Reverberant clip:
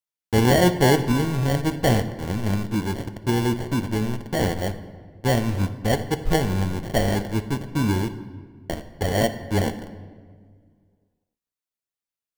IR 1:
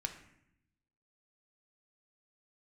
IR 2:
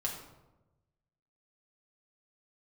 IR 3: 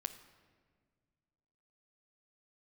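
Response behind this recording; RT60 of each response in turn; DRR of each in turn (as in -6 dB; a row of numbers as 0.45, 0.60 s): 3; 0.75, 1.0, 1.7 s; 4.0, -2.5, 8.5 dB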